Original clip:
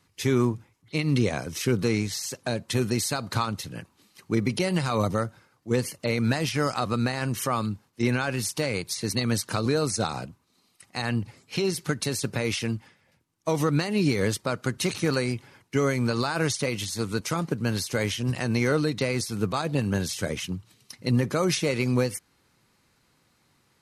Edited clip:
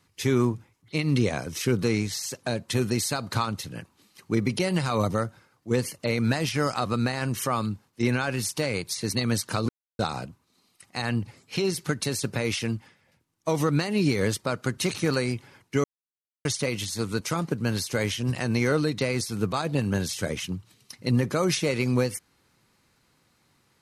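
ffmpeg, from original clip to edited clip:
ffmpeg -i in.wav -filter_complex "[0:a]asplit=5[link_01][link_02][link_03][link_04][link_05];[link_01]atrim=end=9.69,asetpts=PTS-STARTPTS,afade=type=out:start_time=9.686:duration=0.004:curve=hsin[link_06];[link_02]atrim=start=9.69:end=9.99,asetpts=PTS-STARTPTS,volume=0[link_07];[link_03]atrim=start=9.99:end=15.84,asetpts=PTS-STARTPTS,afade=type=in:duration=0.004:curve=hsin,afade=type=out:start_time=5.846:duration=0.004:curve=hsin[link_08];[link_04]atrim=start=15.84:end=16.45,asetpts=PTS-STARTPTS,volume=0[link_09];[link_05]atrim=start=16.45,asetpts=PTS-STARTPTS,afade=type=in:duration=0.004:curve=hsin[link_10];[link_06][link_07][link_08][link_09][link_10]concat=n=5:v=0:a=1" out.wav

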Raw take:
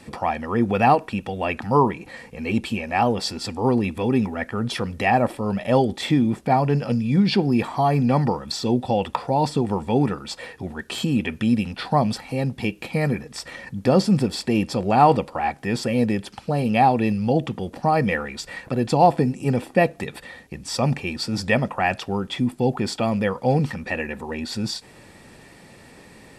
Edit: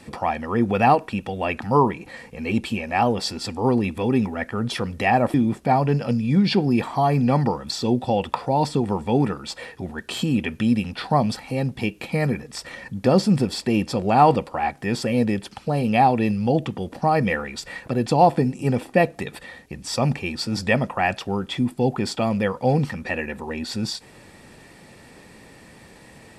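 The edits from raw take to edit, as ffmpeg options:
ffmpeg -i in.wav -filter_complex "[0:a]asplit=2[link_01][link_02];[link_01]atrim=end=5.342[link_03];[link_02]atrim=start=6.148[link_04];[link_03][link_04]acrossfade=duration=0.004:curve1=hsin:curve2=hsin" out.wav

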